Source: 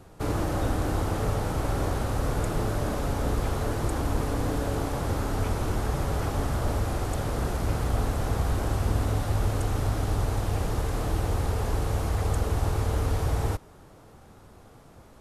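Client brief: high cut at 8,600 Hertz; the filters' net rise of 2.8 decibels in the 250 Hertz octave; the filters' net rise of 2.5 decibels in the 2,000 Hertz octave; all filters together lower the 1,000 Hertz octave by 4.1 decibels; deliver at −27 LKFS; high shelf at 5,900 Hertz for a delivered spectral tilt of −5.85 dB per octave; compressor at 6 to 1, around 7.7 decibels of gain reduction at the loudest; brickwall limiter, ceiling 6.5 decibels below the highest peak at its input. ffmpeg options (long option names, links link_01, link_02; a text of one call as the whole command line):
ffmpeg -i in.wav -af "lowpass=8600,equalizer=frequency=250:width_type=o:gain=4,equalizer=frequency=1000:width_type=o:gain=-7.5,equalizer=frequency=2000:width_type=o:gain=5.5,highshelf=frequency=5900:gain=6,acompressor=threshold=-29dB:ratio=6,volume=10.5dB,alimiter=limit=-17dB:level=0:latency=1" out.wav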